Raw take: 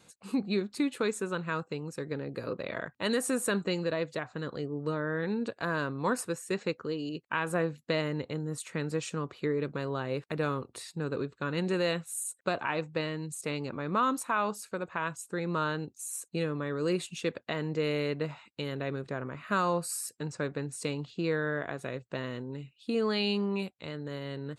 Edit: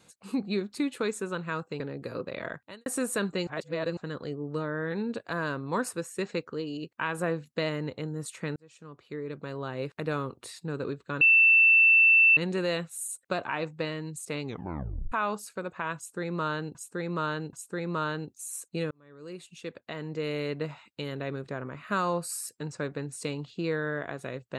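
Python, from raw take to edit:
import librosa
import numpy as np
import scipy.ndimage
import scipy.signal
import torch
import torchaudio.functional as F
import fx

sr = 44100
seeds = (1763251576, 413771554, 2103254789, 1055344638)

y = fx.edit(x, sr, fx.cut(start_s=1.8, length_s=0.32),
    fx.fade_out_span(start_s=2.9, length_s=0.28, curve='qua'),
    fx.reverse_span(start_s=3.79, length_s=0.5),
    fx.fade_in_span(start_s=8.88, length_s=1.34),
    fx.insert_tone(at_s=11.53, length_s=1.16, hz=2670.0, db=-15.5),
    fx.tape_stop(start_s=13.59, length_s=0.69),
    fx.repeat(start_s=15.13, length_s=0.78, count=3),
    fx.fade_in_span(start_s=16.51, length_s=1.71), tone=tone)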